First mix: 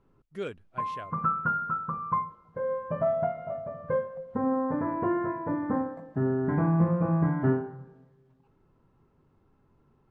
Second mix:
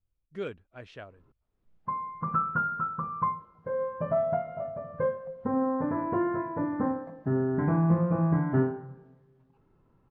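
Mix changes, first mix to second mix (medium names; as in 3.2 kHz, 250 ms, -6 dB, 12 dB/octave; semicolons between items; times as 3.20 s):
background: entry +1.10 s; master: add distance through air 90 m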